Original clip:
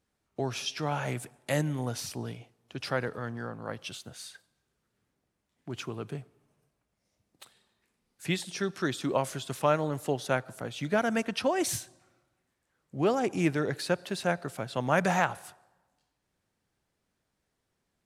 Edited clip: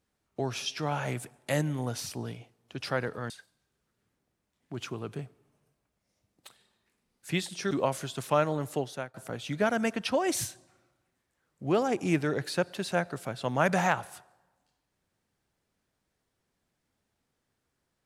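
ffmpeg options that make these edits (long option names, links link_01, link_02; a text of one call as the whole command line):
ffmpeg -i in.wav -filter_complex "[0:a]asplit=4[link_01][link_02][link_03][link_04];[link_01]atrim=end=3.302[link_05];[link_02]atrim=start=4.258:end=8.672[link_06];[link_03]atrim=start=9.028:end=10.46,asetpts=PTS-STARTPTS,afade=type=out:start_time=1.012:duration=0.42:silence=0.0841395[link_07];[link_04]atrim=start=10.46,asetpts=PTS-STARTPTS,afade=type=in:duration=0.004:curve=hsin:silence=0.0841395[link_08];[link_05][link_06]acrossfade=duration=0.004:curve1=hsin:curve2=hsin[link_09];[link_07][link_08]concat=n=2:v=0:a=1[link_10];[link_09][link_10]acrossfade=duration=0.004:curve1=hsin:curve2=hsin" out.wav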